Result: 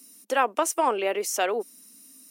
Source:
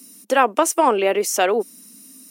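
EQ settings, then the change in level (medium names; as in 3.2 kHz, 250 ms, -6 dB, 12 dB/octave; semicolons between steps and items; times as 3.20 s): peaking EQ 110 Hz -10.5 dB 2.2 oct; -6.0 dB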